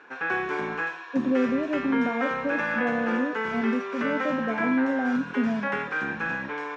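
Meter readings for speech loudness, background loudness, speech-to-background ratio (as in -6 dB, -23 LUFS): -28.0 LUFS, -29.5 LUFS, 1.5 dB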